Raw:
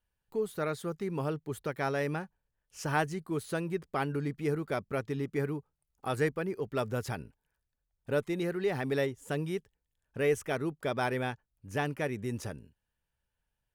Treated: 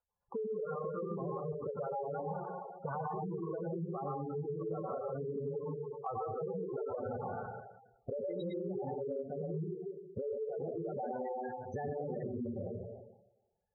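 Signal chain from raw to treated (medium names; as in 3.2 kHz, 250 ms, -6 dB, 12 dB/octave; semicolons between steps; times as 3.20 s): level held to a coarse grid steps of 20 dB; peaking EQ 590 Hz +8.5 dB 0.98 oct; hum notches 60/120/180/240/300/360/420/480/540 Hz; comb of notches 310 Hz; peak limiter -35 dBFS, peak gain reduction 9.5 dB; bass shelf 190 Hz -3 dB; reverberation RT60 1.0 s, pre-delay 89 ms, DRR -5 dB; low-pass sweep 1.2 kHz -> 7.9 kHz, 7.23–9.22 s; spectral gate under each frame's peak -10 dB strong; compression 6:1, threshold -46 dBFS, peak gain reduction 13 dB; trim +10 dB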